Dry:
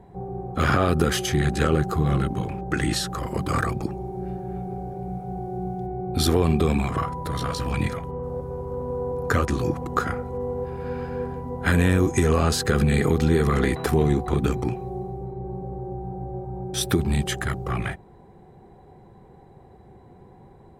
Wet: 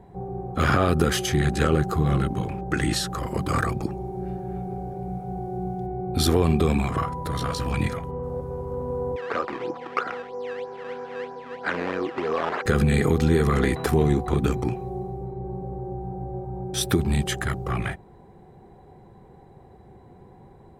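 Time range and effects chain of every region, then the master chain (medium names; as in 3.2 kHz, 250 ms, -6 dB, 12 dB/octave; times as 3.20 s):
9.16–12.66 s: decimation with a swept rate 14× 3.1 Hz + band-pass 440–2000 Hz
whole clip: none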